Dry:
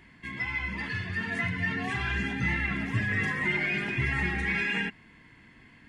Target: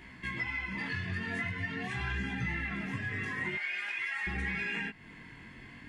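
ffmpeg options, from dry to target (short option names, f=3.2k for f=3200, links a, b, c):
-filter_complex "[0:a]asettb=1/sr,asplit=3[a][b][c];[a]atrim=end=3.554[d];[b]atrim=start=3.55:end=4.27,asetpts=PTS-STARTPTS,afade=t=in:d=0.004:c=qsin,afade=t=out:st=0.716:d=0.004:c=qsin,highpass=1.1k[e];[c]atrim=start=4.266[f];[d][e]acrossfade=d=0.004:c1=hsin:c2=qsin[g];[g][f]acrossfade=d=0.004:c1=qsin:c2=hsin,acompressor=threshold=-39dB:ratio=4,flanger=delay=15.5:depth=7.2:speed=0.46,volume=7.5dB"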